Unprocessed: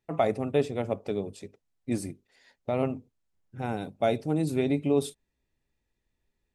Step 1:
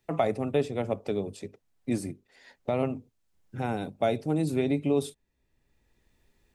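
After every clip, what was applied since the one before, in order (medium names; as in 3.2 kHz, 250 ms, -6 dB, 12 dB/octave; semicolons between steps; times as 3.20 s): three bands compressed up and down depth 40%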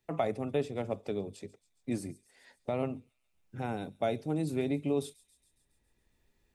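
feedback echo behind a high-pass 138 ms, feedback 63%, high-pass 5.2 kHz, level -15 dB; trim -5 dB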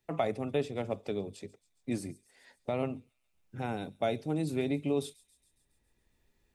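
dynamic bell 3.3 kHz, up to +3 dB, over -55 dBFS, Q 0.77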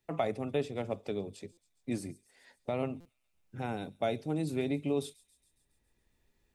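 buffer glitch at 1.52/3.00 s, samples 256, times 8; trim -1 dB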